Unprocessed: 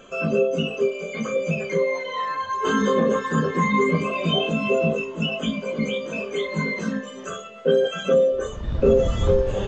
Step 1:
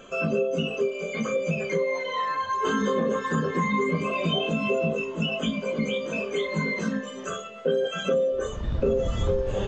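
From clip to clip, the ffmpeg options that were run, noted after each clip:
ffmpeg -i in.wav -af "acompressor=threshold=-23dB:ratio=2.5" out.wav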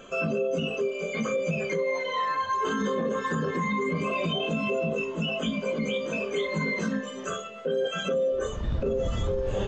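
ffmpeg -i in.wav -af "alimiter=limit=-19.5dB:level=0:latency=1:release=34" out.wav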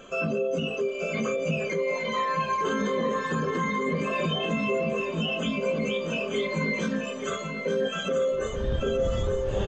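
ffmpeg -i in.wav -af "aecho=1:1:884|1768|2652|3536:0.447|0.13|0.0376|0.0109" out.wav

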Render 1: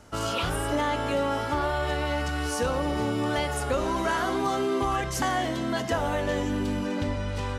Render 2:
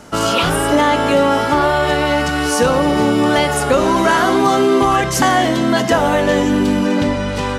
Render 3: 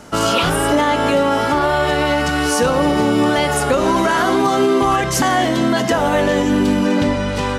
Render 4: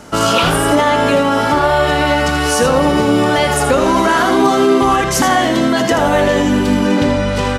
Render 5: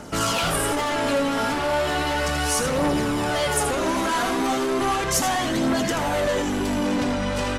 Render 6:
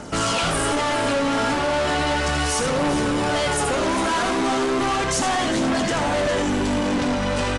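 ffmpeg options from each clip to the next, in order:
ffmpeg -i in.wav -af "lowshelf=frequency=120:width_type=q:width=1.5:gain=-7,acontrast=63,volume=6.5dB" out.wav
ffmpeg -i in.wav -af "alimiter=limit=-6.5dB:level=0:latency=1:release=120" out.wav
ffmpeg -i in.wav -af "aecho=1:1:80:0.376,volume=2.5dB" out.wav
ffmpeg -i in.wav -filter_complex "[0:a]acrossover=split=5500[link_01][link_02];[link_01]asoftclip=type=tanh:threshold=-17.5dB[link_03];[link_03][link_02]amix=inputs=2:normalize=0,aphaser=in_gain=1:out_gain=1:delay=4.4:decay=0.33:speed=0.35:type=triangular,volume=-4dB" out.wav
ffmpeg -i in.wav -af "asoftclip=type=hard:threshold=-22.5dB,aecho=1:1:409:0.251,aresample=22050,aresample=44100,volume=3dB" out.wav

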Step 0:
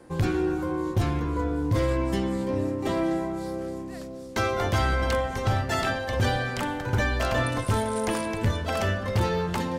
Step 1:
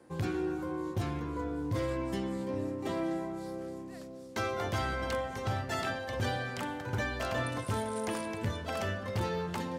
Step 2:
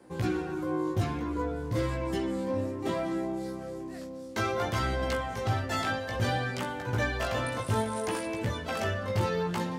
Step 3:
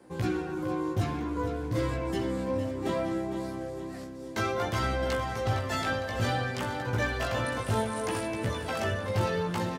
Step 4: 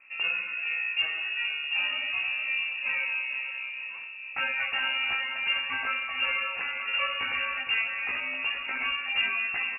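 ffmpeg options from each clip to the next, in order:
ffmpeg -i in.wav -af "highpass=88,volume=-7.5dB" out.wav
ffmpeg -i in.wav -af "flanger=delay=15.5:depth=3.6:speed=0.6,volume=6.5dB" out.wav
ffmpeg -i in.wav -af "aecho=1:1:459|918|1377|1836|2295|2754:0.299|0.152|0.0776|0.0396|0.0202|0.0103" out.wav
ffmpeg -i in.wav -af "lowpass=frequency=2500:width_type=q:width=0.5098,lowpass=frequency=2500:width_type=q:width=0.6013,lowpass=frequency=2500:width_type=q:width=0.9,lowpass=frequency=2500:width_type=q:width=2.563,afreqshift=-2900" out.wav

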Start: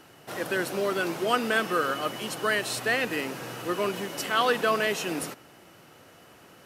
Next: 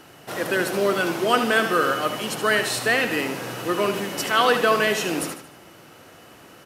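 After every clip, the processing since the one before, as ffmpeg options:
ffmpeg -i in.wav -af "aecho=1:1:75|150|225|300:0.355|0.142|0.0568|0.0227,volume=5dB" out.wav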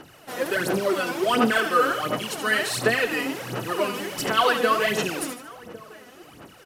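ffmpeg -i in.wav -filter_complex "[0:a]asplit=2[link_01][link_02];[link_02]adelay=1108,volume=-21dB,highshelf=frequency=4000:gain=-24.9[link_03];[link_01][link_03]amix=inputs=2:normalize=0,aphaser=in_gain=1:out_gain=1:delay=4.1:decay=0.68:speed=1.4:type=sinusoidal,volume=-4.5dB" out.wav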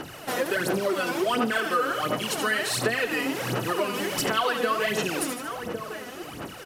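ffmpeg -i in.wav -af "acompressor=threshold=-35dB:ratio=3,volume=8.5dB" out.wav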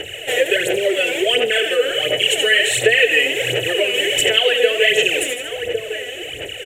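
ffmpeg -i in.wav -af "firequalizer=gain_entry='entry(100,0);entry(200,-21);entry(440,7);entry(620,1);entry(1100,-24);entry(1800,6);entry(3000,12);entry(4800,-18);entry(7300,8);entry(10000,-4)':delay=0.05:min_phase=1,volume=6.5dB" out.wav

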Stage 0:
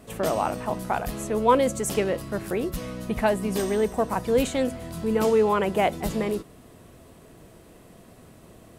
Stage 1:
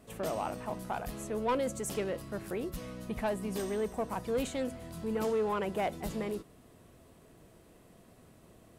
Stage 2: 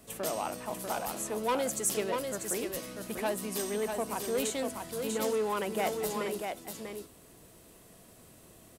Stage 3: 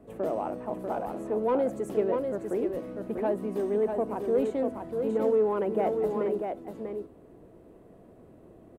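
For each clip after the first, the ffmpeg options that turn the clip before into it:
ffmpeg -i in.wav -af "asoftclip=type=tanh:threshold=-15.5dB,volume=-8.5dB" out.wav
ffmpeg -i in.wav -filter_complex "[0:a]highshelf=frequency=3800:gain=11.5,acrossover=split=180[link_01][link_02];[link_01]acompressor=threshold=-55dB:ratio=6[link_03];[link_02]aecho=1:1:643:0.562[link_04];[link_03][link_04]amix=inputs=2:normalize=0" out.wav
ffmpeg -i in.wav -af "firequalizer=gain_entry='entry(160,0);entry(330,6);entry(1100,-5);entry(3100,-18);entry(5200,-26)':delay=0.05:min_phase=1,volume=2.5dB" out.wav

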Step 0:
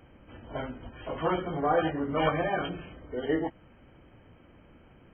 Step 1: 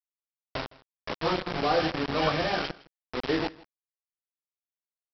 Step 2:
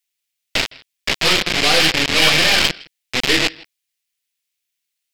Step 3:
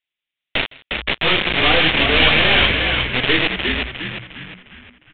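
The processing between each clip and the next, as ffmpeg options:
ffmpeg -i in.wav -af "aresample=11025,acrusher=bits=4:mix=0:aa=0.000001,aresample=44100,aecho=1:1:161:0.0794" out.wav
ffmpeg -i in.wav -af "highshelf=frequency=1600:width_type=q:width=1.5:gain=12.5,aeval=exprs='0.422*(cos(1*acos(clip(val(0)/0.422,-1,1)))-cos(1*PI/2))+0.0596*(cos(6*acos(clip(val(0)/0.422,-1,1)))-cos(6*PI/2))':channel_layout=same,volume=5.5dB" out.wav
ffmpeg -i in.wav -filter_complex "[0:a]aresample=8000,aresample=44100,asplit=2[link_01][link_02];[link_02]asplit=6[link_03][link_04][link_05][link_06][link_07][link_08];[link_03]adelay=356,afreqshift=-62,volume=-4dB[link_09];[link_04]adelay=712,afreqshift=-124,volume=-11.1dB[link_10];[link_05]adelay=1068,afreqshift=-186,volume=-18.3dB[link_11];[link_06]adelay=1424,afreqshift=-248,volume=-25.4dB[link_12];[link_07]adelay=1780,afreqshift=-310,volume=-32.5dB[link_13];[link_08]adelay=2136,afreqshift=-372,volume=-39.7dB[link_14];[link_09][link_10][link_11][link_12][link_13][link_14]amix=inputs=6:normalize=0[link_15];[link_01][link_15]amix=inputs=2:normalize=0" out.wav

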